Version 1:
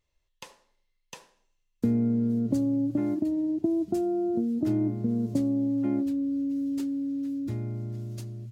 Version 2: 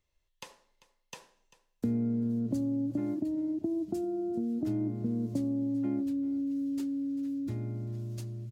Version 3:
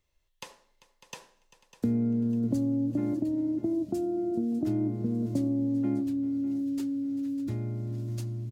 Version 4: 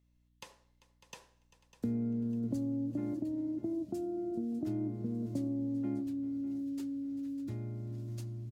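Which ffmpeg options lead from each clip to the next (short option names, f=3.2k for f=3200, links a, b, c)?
-filter_complex "[0:a]asplit=2[a][b];[b]acompressor=threshold=-33dB:ratio=6,volume=-1.5dB[c];[a][c]amix=inputs=2:normalize=0,aecho=1:1:393:0.126,acrossover=split=370|3000[d][e][f];[e]acompressor=threshold=-32dB:ratio=6[g];[d][g][f]amix=inputs=3:normalize=0,volume=-7dB"
-af "aecho=1:1:600|1200|1800|2400:0.188|0.0716|0.0272|0.0103,volume=3dB"
-af "aeval=exprs='val(0)+0.000708*(sin(2*PI*60*n/s)+sin(2*PI*2*60*n/s)/2+sin(2*PI*3*60*n/s)/3+sin(2*PI*4*60*n/s)/4+sin(2*PI*5*60*n/s)/5)':c=same,volume=-7dB"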